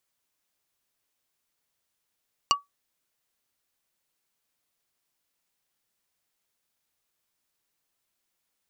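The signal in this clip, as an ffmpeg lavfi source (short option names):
-f lavfi -i "aevalsrc='0.188*pow(10,-3*t/0.16)*sin(2*PI*1140*t)+0.158*pow(10,-3*t/0.053)*sin(2*PI*2850*t)+0.133*pow(10,-3*t/0.03)*sin(2*PI*4560*t)+0.112*pow(10,-3*t/0.023)*sin(2*PI*5700*t)+0.0944*pow(10,-3*t/0.017)*sin(2*PI*7410*t)':d=0.45:s=44100"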